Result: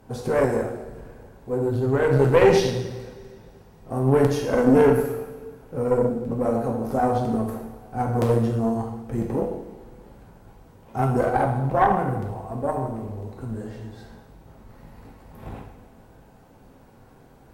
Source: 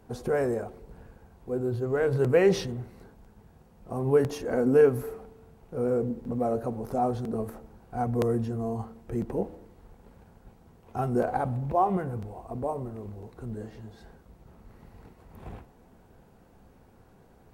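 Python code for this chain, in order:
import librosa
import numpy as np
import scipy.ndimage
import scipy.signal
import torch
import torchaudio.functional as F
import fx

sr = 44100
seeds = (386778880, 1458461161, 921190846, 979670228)

y = fx.vibrato(x, sr, rate_hz=3.9, depth_cents=9.8)
y = fx.rev_double_slope(y, sr, seeds[0], early_s=0.9, late_s=2.7, knee_db=-18, drr_db=-0.5)
y = fx.tube_stage(y, sr, drive_db=14.0, bias=0.7)
y = y * librosa.db_to_amplitude(7.0)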